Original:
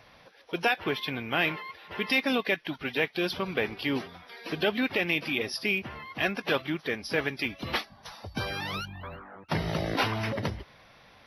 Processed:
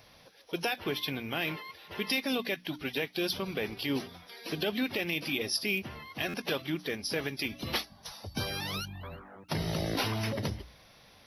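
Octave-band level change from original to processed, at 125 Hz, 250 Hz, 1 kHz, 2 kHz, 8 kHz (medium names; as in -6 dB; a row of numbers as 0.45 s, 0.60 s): -1.5 dB, -2.5 dB, -6.0 dB, -6.0 dB, +5.5 dB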